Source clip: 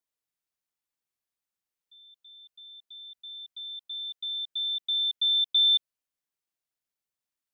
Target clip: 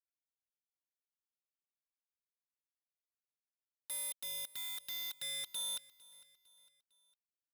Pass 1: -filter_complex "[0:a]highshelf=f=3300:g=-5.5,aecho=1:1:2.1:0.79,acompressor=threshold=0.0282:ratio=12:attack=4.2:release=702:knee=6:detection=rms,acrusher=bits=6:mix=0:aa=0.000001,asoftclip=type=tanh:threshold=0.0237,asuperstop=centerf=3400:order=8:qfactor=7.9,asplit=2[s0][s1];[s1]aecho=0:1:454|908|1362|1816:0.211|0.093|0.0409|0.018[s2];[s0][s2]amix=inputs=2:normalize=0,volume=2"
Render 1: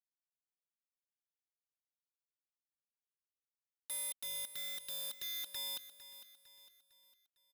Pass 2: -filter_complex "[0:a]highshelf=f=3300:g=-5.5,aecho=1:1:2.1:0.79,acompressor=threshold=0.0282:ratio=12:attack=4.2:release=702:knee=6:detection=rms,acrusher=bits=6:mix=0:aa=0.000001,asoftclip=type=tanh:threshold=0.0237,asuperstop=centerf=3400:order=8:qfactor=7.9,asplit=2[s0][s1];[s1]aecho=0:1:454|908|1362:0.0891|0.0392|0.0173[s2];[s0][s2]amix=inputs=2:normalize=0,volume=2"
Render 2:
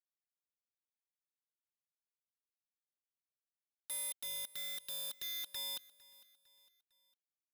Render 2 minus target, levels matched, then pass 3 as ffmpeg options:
compression: peak gain reduction +5 dB
-filter_complex "[0:a]highshelf=f=3300:g=-5.5,aecho=1:1:2.1:0.79,acrusher=bits=6:mix=0:aa=0.000001,asoftclip=type=tanh:threshold=0.0237,asuperstop=centerf=3400:order=8:qfactor=7.9,asplit=2[s0][s1];[s1]aecho=0:1:454|908|1362:0.0891|0.0392|0.0173[s2];[s0][s2]amix=inputs=2:normalize=0,volume=2"

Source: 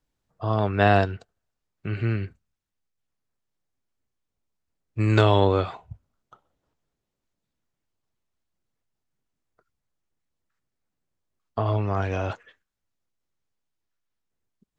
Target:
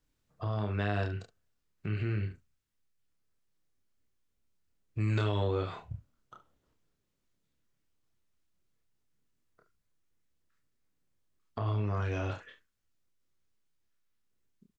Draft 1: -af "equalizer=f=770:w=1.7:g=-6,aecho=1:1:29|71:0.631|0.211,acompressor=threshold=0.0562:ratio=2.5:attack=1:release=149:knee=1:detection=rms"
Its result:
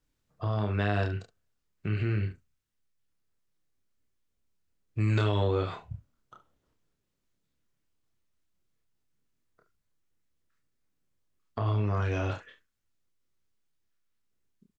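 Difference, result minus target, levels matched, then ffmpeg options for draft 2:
compression: peak gain reduction -3.5 dB
-af "equalizer=f=770:w=1.7:g=-6,aecho=1:1:29|71:0.631|0.211,acompressor=threshold=0.0282:ratio=2.5:attack=1:release=149:knee=1:detection=rms"

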